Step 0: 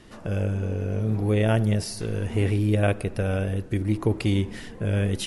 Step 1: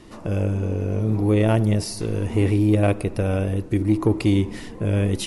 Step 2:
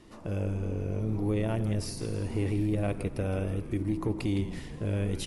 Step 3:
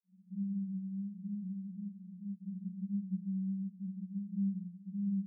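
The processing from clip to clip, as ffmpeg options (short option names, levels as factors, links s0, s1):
-af "equalizer=f=315:t=o:w=0.33:g=6,equalizer=f=1000:t=o:w=0.33:g=4,equalizer=f=1600:t=o:w=0.33:g=-6,equalizer=f=3150:t=o:w=0.33:g=-3,acontrast=78,volume=0.631"
-filter_complex "[0:a]alimiter=limit=0.211:level=0:latency=1,asplit=2[s0][s1];[s1]asplit=6[s2][s3][s4][s5][s6][s7];[s2]adelay=163,afreqshift=-120,volume=0.282[s8];[s3]adelay=326,afreqshift=-240,volume=0.155[s9];[s4]adelay=489,afreqshift=-360,volume=0.0851[s10];[s5]adelay=652,afreqshift=-480,volume=0.0468[s11];[s6]adelay=815,afreqshift=-600,volume=0.0257[s12];[s7]adelay=978,afreqshift=-720,volume=0.0141[s13];[s8][s9][s10][s11][s12][s13]amix=inputs=6:normalize=0[s14];[s0][s14]amix=inputs=2:normalize=0,volume=0.376"
-af "asuperpass=centerf=190:order=20:qfactor=6.5,volume=1.5"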